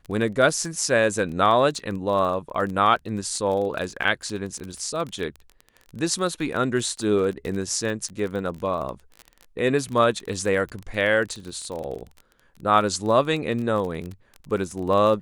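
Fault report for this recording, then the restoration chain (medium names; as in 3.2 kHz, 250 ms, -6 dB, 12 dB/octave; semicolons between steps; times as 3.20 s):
crackle 25 per s -29 dBFS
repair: de-click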